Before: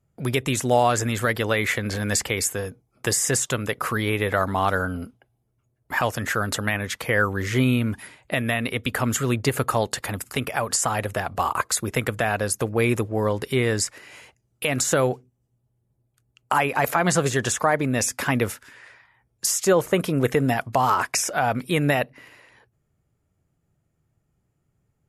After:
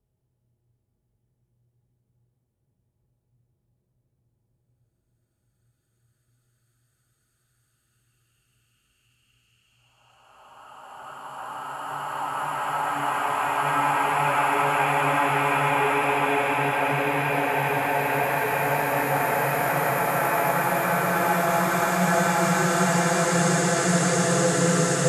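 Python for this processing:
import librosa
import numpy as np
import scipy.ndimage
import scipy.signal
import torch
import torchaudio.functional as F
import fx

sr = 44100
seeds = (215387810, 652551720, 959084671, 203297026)

y = fx.paulstretch(x, sr, seeds[0], factor=17.0, window_s=0.5, from_s=15.7)
y = y * 10.0 ** (-1.0 / 20.0)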